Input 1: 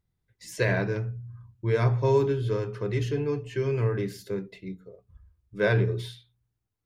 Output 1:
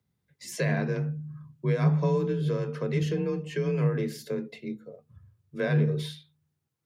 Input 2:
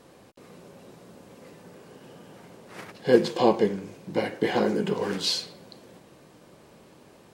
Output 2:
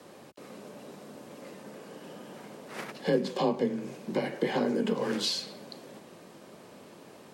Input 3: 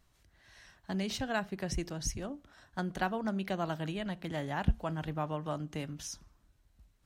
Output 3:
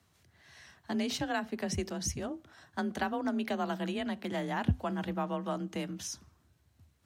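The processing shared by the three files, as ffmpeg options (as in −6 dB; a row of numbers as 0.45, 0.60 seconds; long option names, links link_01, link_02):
-filter_complex "[0:a]highpass=frequency=61:poles=1,afreqshift=32,acrossover=split=220[link_01][link_02];[link_02]acompressor=threshold=-32dB:ratio=3[link_03];[link_01][link_03]amix=inputs=2:normalize=0,volume=2.5dB"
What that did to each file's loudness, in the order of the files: −1.5, −5.5, +1.5 LU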